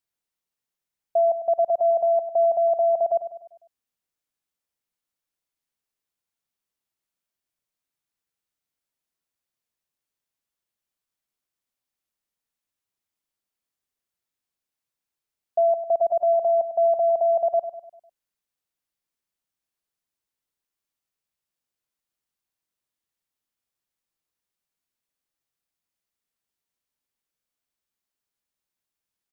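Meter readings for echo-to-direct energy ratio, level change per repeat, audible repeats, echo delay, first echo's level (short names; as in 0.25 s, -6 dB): -10.0 dB, -6.5 dB, 4, 0.1 s, -11.0 dB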